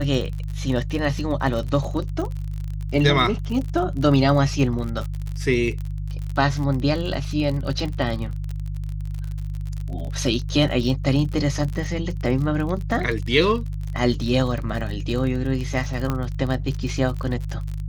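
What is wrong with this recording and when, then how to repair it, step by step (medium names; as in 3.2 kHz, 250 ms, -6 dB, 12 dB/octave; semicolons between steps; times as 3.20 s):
crackle 42 per s -28 dBFS
hum 50 Hz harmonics 3 -28 dBFS
16.10 s: pop -11 dBFS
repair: de-click; de-hum 50 Hz, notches 3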